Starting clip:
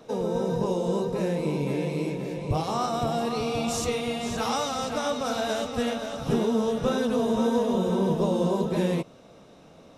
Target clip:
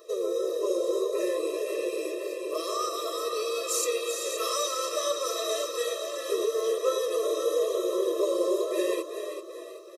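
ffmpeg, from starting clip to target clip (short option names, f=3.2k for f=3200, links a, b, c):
-filter_complex "[0:a]aemphasis=mode=production:type=50kf,asplit=6[a][b][c][d][e][f];[b]adelay=385,afreqshift=60,volume=-8dB[g];[c]adelay=770,afreqshift=120,volume=-15.1dB[h];[d]adelay=1155,afreqshift=180,volume=-22.3dB[i];[e]adelay=1540,afreqshift=240,volume=-29.4dB[j];[f]adelay=1925,afreqshift=300,volume=-36.5dB[k];[a][g][h][i][j][k]amix=inputs=6:normalize=0,afftfilt=real='re*eq(mod(floor(b*sr/1024/340),2),1)':imag='im*eq(mod(floor(b*sr/1024/340),2),1)':win_size=1024:overlap=0.75"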